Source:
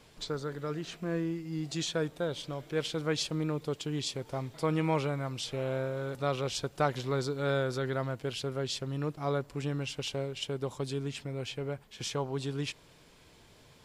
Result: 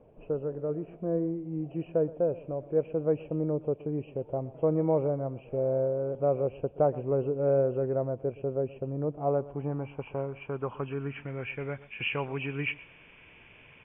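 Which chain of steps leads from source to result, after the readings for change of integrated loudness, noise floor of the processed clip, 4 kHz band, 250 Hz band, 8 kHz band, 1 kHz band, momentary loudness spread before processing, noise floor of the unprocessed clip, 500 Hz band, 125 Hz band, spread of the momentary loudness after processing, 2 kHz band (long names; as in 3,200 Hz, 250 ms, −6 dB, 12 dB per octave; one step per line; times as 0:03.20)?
+3.0 dB, −55 dBFS, below −10 dB, +2.0 dB, below −35 dB, −0.5 dB, 7 LU, −59 dBFS, +6.0 dB, +0.5 dB, 9 LU, 0.0 dB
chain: hearing-aid frequency compression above 2,200 Hz 4 to 1
single-tap delay 123 ms −19 dB
low-pass filter sweep 580 Hz → 2,200 Hz, 0:08.96–0:11.88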